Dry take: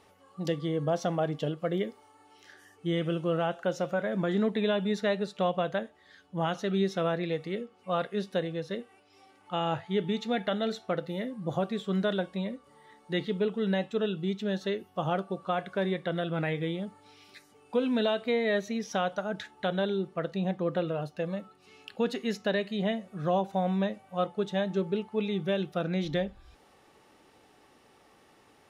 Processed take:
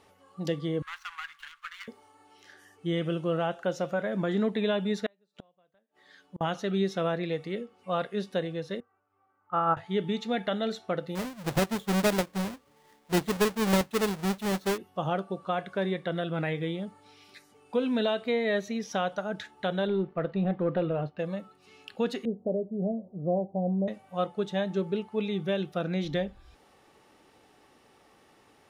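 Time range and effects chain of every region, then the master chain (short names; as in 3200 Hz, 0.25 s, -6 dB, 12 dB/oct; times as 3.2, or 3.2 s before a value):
0.82–1.88 median filter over 25 samples + inverse Chebyshev band-stop 110–680 Hz, stop band 50 dB + bell 1000 Hz +15 dB 1.7 oct
5.06–6.41 HPF 160 Hz + flipped gate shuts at -30 dBFS, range -38 dB
8.8–9.77 synth low-pass 1300 Hz + bell 94 Hz +10.5 dB 0.28 oct + upward expander 2.5:1, over -33 dBFS
11.15–14.78 half-waves squared off + upward expander, over -38 dBFS
19.87–21.19 sample leveller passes 1 + air absorption 350 m
22.25–23.88 switching spikes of -34 dBFS + steep low-pass 670 Hz + doubler 17 ms -13 dB
whole clip: dry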